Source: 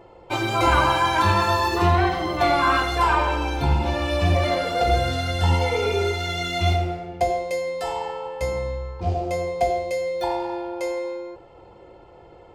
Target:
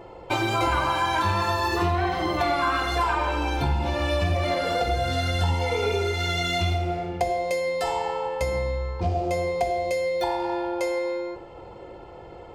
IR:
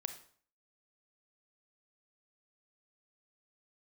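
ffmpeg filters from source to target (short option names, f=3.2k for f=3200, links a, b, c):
-filter_complex "[0:a]acompressor=threshold=-27dB:ratio=4,asplit=2[a][b];[1:a]atrim=start_sample=2205[c];[b][c]afir=irnorm=-1:irlink=0,volume=6.5dB[d];[a][d]amix=inputs=2:normalize=0,volume=-4dB"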